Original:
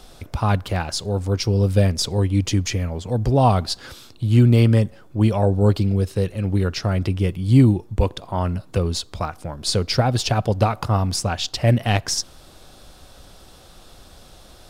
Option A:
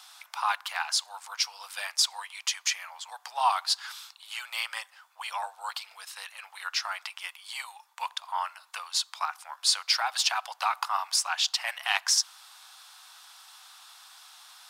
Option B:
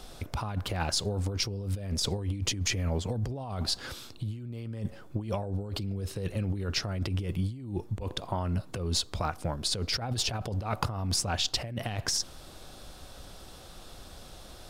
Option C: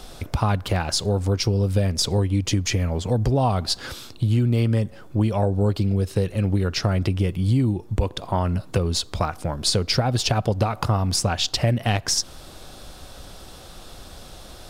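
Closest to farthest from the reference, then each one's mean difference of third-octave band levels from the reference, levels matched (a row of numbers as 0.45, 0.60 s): C, B, A; 3.5, 8.0, 16.5 dB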